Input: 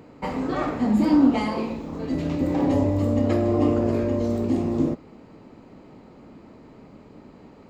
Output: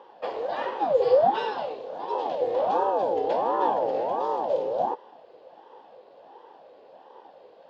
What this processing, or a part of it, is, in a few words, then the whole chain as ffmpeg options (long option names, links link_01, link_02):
voice changer toy: -af "aeval=exprs='val(0)*sin(2*PI*430*n/s+430*0.6/1.4*sin(2*PI*1.4*n/s))':channel_layout=same,highpass=500,equalizer=frequency=510:width_type=q:width=4:gain=9,equalizer=frequency=830:width_type=q:width=4:gain=4,equalizer=frequency=1300:width_type=q:width=4:gain=-9,equalizer=frequency=2200:width_type=q:width=4:gain=-8,equalizer=frequency=3300:width_type=q:width=4:gain=5,lowpass=frequency=5000:width=0.5412,lowpass=frequency=5000:width=1.3066"